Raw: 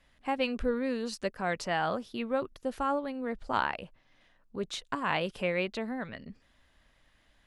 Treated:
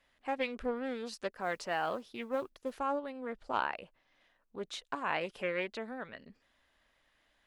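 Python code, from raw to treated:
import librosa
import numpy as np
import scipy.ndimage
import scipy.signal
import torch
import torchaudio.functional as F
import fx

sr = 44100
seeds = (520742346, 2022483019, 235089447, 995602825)

y = fx.bass_treble(x, sr, bass_db=-10, treble_db=-2)
y = fx.mod_noise(y, sr, seeds[0], snr_db=32, at=(1.31, 2.79))
y = fx.doppler_dist(y, sr, depth_ms=0.2)
y = F.gain(torch.from_numpy(y), -3.5).numpy()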